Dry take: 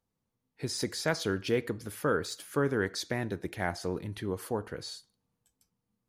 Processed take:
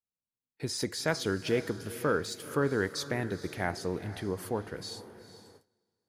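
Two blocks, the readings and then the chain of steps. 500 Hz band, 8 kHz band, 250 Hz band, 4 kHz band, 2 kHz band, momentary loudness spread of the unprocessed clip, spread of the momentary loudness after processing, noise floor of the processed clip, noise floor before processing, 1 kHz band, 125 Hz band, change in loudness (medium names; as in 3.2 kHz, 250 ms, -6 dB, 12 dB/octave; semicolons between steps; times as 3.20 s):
+0.5 dB, 0.0 dB, 0.0 dB, 0.0 dB, 0.0 dB, 9 LU, 11 LU, under -85 dBFS, -84 dBFS, 0.0 dB, 0.0 dB, 0.0 dB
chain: echo that smears into a reverb 464 ms, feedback 43%, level -14 dB; gate with hold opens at -45 dBFS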